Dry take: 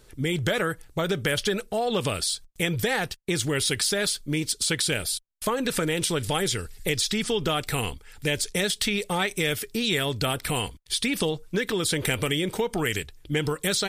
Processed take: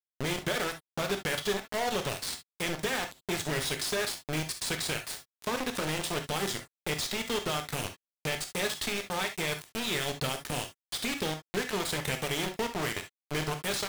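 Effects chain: bit-crush 4-bit; high shelf 8600 Hz -7 dB; non-linear reverb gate 90 ms flat, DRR 5.5 dB; gain -7.5 dB

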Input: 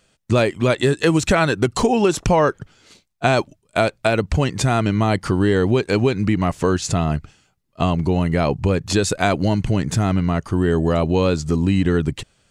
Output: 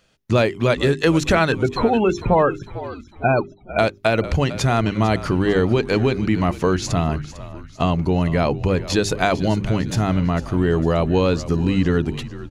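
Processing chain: bell 8200 Hz -11.5 dB 0.32 oct; notches 50/100/150/200/250/300/350/400 Hz; 1.52–3.79 loudest bins only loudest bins 32; frequency-shifting echo 0.451 s, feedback 45%, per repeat -57 Hz, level -15 dB

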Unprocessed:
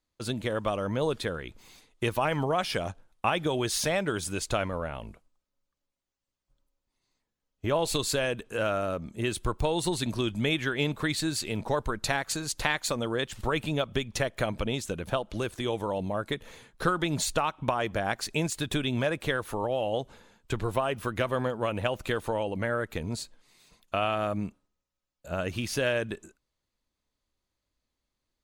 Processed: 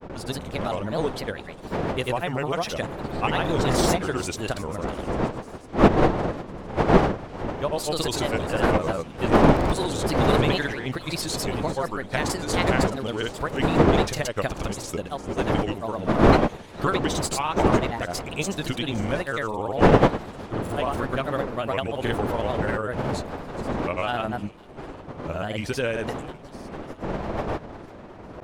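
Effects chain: wind noise 610 Hz -27 dBFS; thin delay 0.43 s, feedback 55%, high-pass 3800 Hz, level -14 dB; grains, pitch spread up and down by 3 st; gain +2.5 dB

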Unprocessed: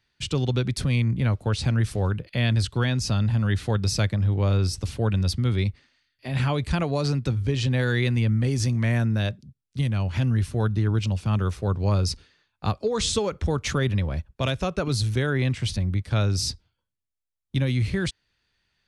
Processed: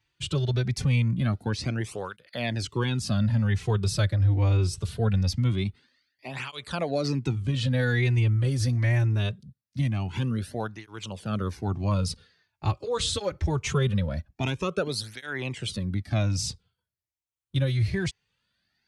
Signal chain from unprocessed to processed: moving spectral ripple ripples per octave 0.7, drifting +1.1 Hz, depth 6 dB; tape flanging out of phase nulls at 0.23 Hz, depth 5 ms

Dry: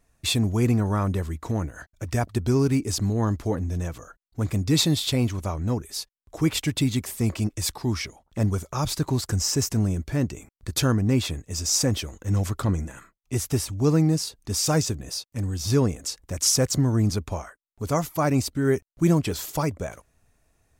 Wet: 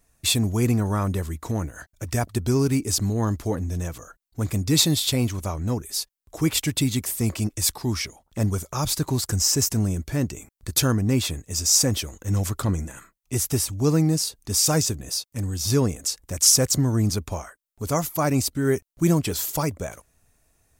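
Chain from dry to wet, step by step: high shelf 6200 Hz +9.5 dB

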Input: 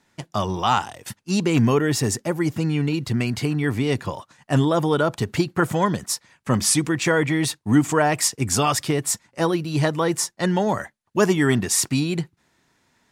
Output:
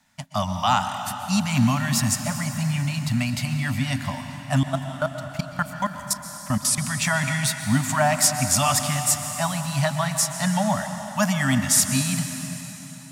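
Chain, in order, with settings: Chebyshev band-stop 270–580 Hz, order 5; high shelf 9800 Hz +7.5 dB; 4.63–6.78 level quantiser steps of 21 dB; plate-style reverb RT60 4 s, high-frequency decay 0.85×, pre-delay 0.11 s, DRR 6.5 dB

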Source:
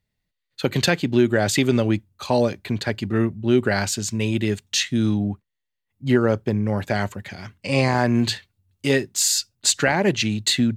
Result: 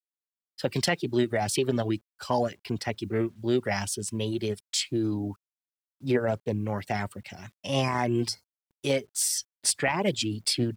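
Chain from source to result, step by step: reverb removal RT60 0.5 s; formant shift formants +3 st; bit-crush 10-bit; spectral gain 8.28–8.52, 1600–4100 Hz -17 dB; gain -6 dB

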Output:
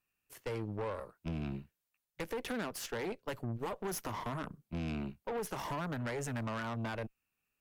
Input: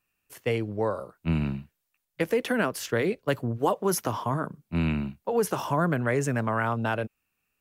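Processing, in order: compressor, threshold -25 dBFS, peak gain reduction 7 dB; tube stage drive 31 dB, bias 0.8; gain -2 dB

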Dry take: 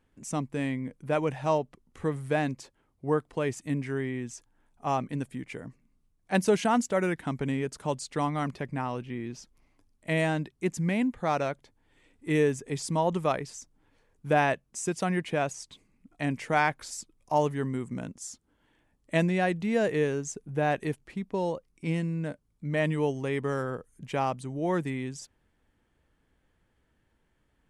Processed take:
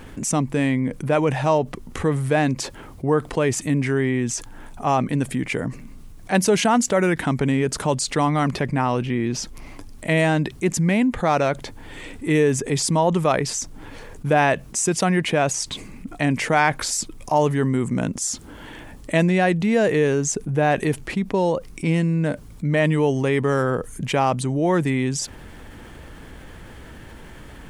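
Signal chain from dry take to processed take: fast leveller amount 50%; gain +4.5 dB

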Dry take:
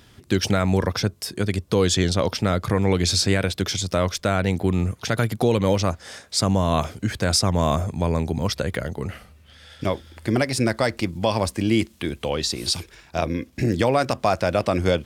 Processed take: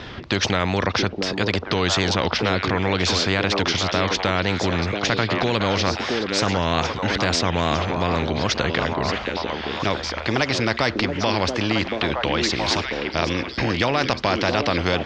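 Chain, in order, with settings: Bessel low-pass 3000 Hz, order 8; added harmonics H 2 -35 dB, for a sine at -7.5 dBFS; on a send: delay with a stepping band-pass 0.676 s, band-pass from 340 Hz, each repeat 1.4 oct, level -3 dB; on the sum: wow and flutter 76 cents; in parallel at -1.5 dB: limiter -16 dBFS, peak gain reduction 10 dB; on the sum: spectral compressor 2:1

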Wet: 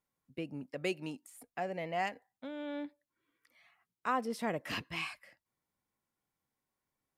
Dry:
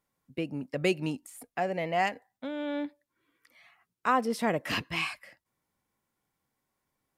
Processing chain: 0.71–1.27 HPF 220 Hz 6 dB/oct; gain -7 dB

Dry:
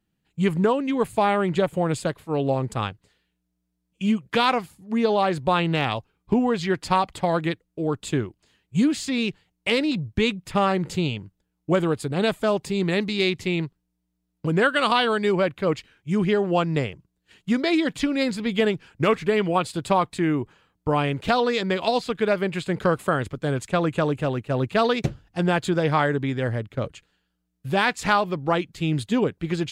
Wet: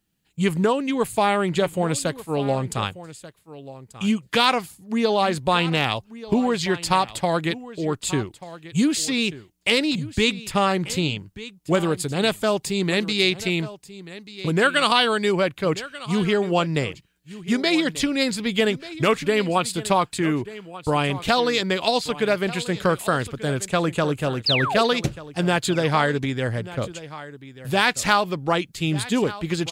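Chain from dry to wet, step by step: painted sound fall, 24.46–24.82, 380–5300 Hz -26 dBFS; high shelf 3400 Hz +11 dB; echo 1.187 s -16.5 dB

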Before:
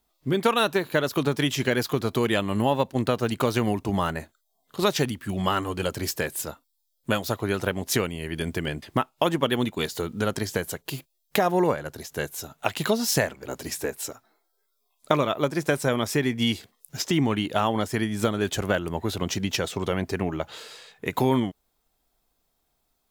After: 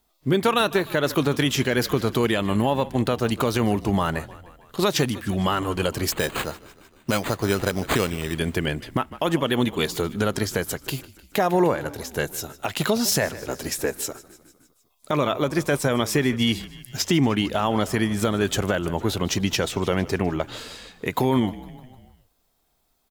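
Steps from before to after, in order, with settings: 6.12–8.34 careless resampling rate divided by 8×, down none, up hold; frequency-shifting echo 0.152 s, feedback 63%, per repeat -35 Hz, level -20 dB; limiter -14 dBFS, peak gain reduction 11 dB; gain +4 dB

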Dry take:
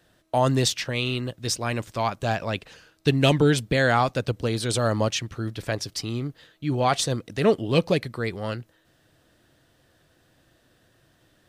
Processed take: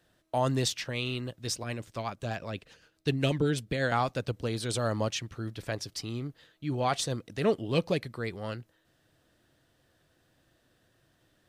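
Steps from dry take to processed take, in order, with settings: 1.63–3.92 rotary speaker horn 8 Hz; gain -6.5 dB

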